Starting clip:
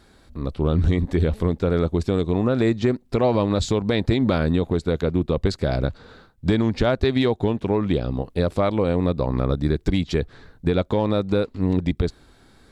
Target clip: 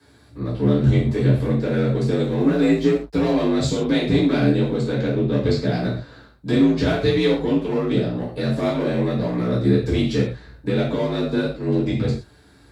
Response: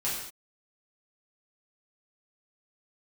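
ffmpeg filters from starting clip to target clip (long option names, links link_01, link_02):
-filter_complex "[0:a]asettb=1/sr,asplit=3[link_01][link_02][link_03];[link_01]atrim=end=4.884[link_04];[link_02]atrim=start=4.88:end=5.73,asetpts=PTS-STARTPTS,afade=type=in:duration=0.004:curve=qsin,afade=type=out:start_time=0.846:duration=0.004:curve=qsin,lowpass=6000[link_05];[link_03]atrim=start=5.726[link_06];[link_04][link_05]acrossfade=duration=0.004:curve1=hsin:curve2=qsin[link_07];[link_07][link_06]acrossfade=duration=0.004:curve1=qsin:curve2=hsin,aeval=exprs='0.447*(cos(1*acos(clip(val(0)/0.447,-1,1)))-cos(1*PI/2))+0.0282*(cos(4*acos(clip(val(0)/0.447,-1,1)))-cos(4*PI/2))+0.00891*(cos(5*acos(clip(val(0)/0.447,-1,1)))-cos(5*PI/2))+0.00708*(cos(6*acos(clip(val(0)/0.447,-1,1)))-cos(6*PI/2))+0.0126*(cos(7*acos(clip(val(0)/0.447,-1,1)))-cos(7*PI/2))':channel_layout=same,acrossover=split=490|1300[link_08][link_09][link_10];[link_09]asoftclip=type=hard:threshold=-32.5dB[link_11];[link_08][link_11][link_10]amix=inputs=3:normalize=0[link_12];[1:a]atrim=start_sample=2205,asetrate=74970,aresample=44100[link_13];[link_12][link_13]afir=irnorm=-1:irlink=0,asettb=1/sr,asplit=3[link_14][link_15][link_16];[link_14]atrim=end=2.244[link_17];[link_15]atrim=start=2.24:end=3.22,asetpts=PTS-STARTPTS,afade=type=in:duration=0.004:curve=qsin,afade=type=out:start_time=0.976:duration=0.004:curve=qsin,aeval=exprs='sgn(val(0))*max(abs(val(0))-0.00447,0)':channel_layout=same[link_18];[link_16]atrim=start=3.216[link_19];[link_17][link_18]acrossfade=duration=0.004:curve1=hsin:curve2=qsin[link_20];[link_20][link_19]acrossfade=duration=0.004:curve1=qsin:curve2=hsin,afreqshift=48"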